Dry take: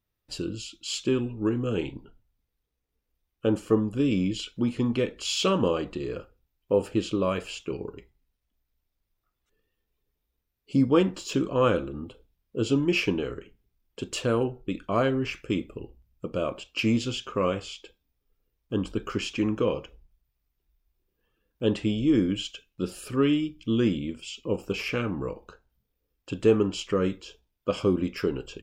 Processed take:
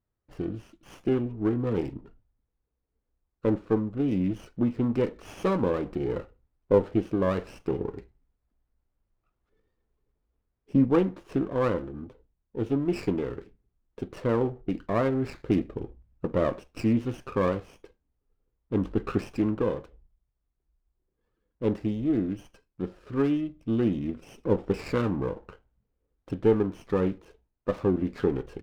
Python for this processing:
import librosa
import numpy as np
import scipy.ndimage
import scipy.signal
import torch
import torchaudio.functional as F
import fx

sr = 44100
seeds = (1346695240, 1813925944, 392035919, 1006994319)

y = scipy.signal.sosfilt(scipy.signal.butter(2, 1700.0, 'lowpass', fs=sr, output='sos'), x)
y = fx.rider(y, sr, range_db=4, speed_s=0.5)
y = fx.running_max(y, sr, window=9)